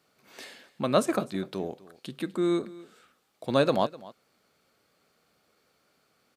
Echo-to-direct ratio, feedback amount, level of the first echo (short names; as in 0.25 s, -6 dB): -20.0 dB, no steady repeat, -20.0 dB